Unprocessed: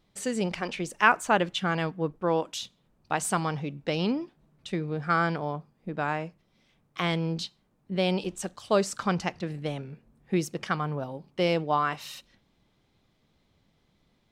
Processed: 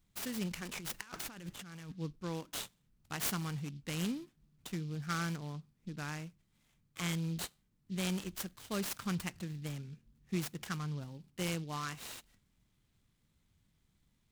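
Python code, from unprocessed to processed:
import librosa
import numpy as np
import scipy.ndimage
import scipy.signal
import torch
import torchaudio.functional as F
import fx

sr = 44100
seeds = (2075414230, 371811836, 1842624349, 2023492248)

y = fx.tone_stack(x, sr, knobs='6-0-2')
y = fx.over_compress(y, sr, threshold_db=-56.0, ratio=-1.0, at=(0.73, 1.91), fade=0.02)
y = fx.high_shelf(y, sr, hz=11000.0, db=9.0)
y = fx.noise_mod_delay(y, sr, seeds[0], noise_hz=3700.0, depth_ms=0.048)
y = y * 10.0 ** (10.0 / 20.0)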